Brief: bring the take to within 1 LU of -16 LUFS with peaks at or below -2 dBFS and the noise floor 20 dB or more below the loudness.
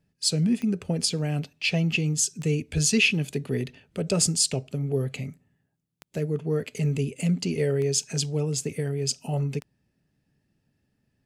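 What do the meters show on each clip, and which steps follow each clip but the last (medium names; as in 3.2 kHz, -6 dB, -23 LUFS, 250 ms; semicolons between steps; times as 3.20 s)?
clicks found 6; loudness -26.0 LUFS; peak level -9.5 dBFS; loudness target -16.0 LUFS
-> de-click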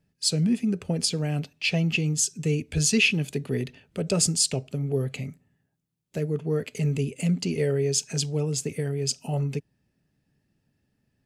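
clicks found 0; loudness -26.0 LUFS; peak level -9.5 dBFS; loudness target -16.0 LUFS
-> trim +10 dB; peak limiter -2 dBFS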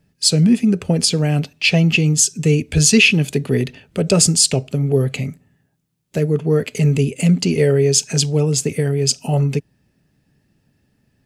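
loudness -16.0 LUFS; peak level -2.0 dBFS; noise floor -65 dBFS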